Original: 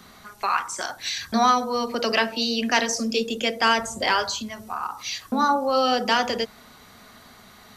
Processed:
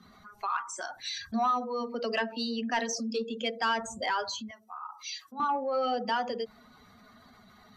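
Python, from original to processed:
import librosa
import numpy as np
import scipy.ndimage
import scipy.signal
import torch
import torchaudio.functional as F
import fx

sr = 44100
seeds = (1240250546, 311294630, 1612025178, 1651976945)

y = fx.spec_expand(x, sr, power=1.7)
y = fx.peak_eq(y, sr, hz=4100.0, db=13.5, octaves=0.23, at=(2.85, 3.78))
y = fx.highpass(y, sr, hz=1400.0, slope=6, at=(4.51, 5.4))
y = 10.0 ** (-9.5 / 20.0) * np.tanh(y / 10.0 ** (-9.5 / 20.0))
y = y * 10.0 ** (-7.5 / 20.0)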